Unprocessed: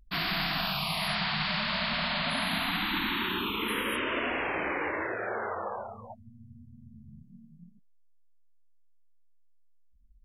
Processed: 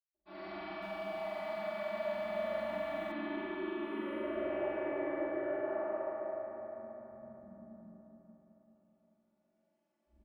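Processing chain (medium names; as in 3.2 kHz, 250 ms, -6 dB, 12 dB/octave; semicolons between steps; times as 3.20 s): recorder AGC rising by 7.8 dB/s; two resonant band-passes 480 Hz, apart 0.72 oct; comb 3.5 ms, depth 97%; saturation -29 dBFS, distortion -22 dB; flutter echo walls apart 7.7 m, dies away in 1 s; reverberation RT60 4.3 s, pre-delay 145 ms; 0.64–3.12 s: bit-crushed delay 181 ms, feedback 55%, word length 10-bit, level -9.5 dB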